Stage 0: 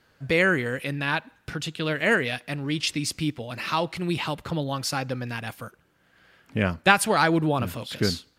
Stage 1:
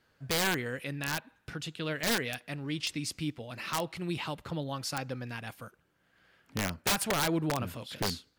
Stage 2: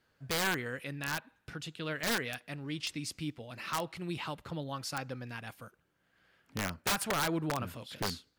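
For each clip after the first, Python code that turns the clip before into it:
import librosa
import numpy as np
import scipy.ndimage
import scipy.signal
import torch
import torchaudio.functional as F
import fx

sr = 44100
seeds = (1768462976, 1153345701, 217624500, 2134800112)

y1 = (np.mod(10.0 ** (14.0 / 20.0) * x + 1.0, 2.0) - 1.0) / 10.0 ** (14.0 / 20.0)
y1 = y1 * librosa.db_to_amplitude(-7.5)
y2 = fx.dynamic_eq(y1, sr, hz=1300.0, q=1.5, threshold_db=-44.0, ratio=4.0, max_db=4)
y2 = y2 * librosa.db_to_amplitude(-3.5)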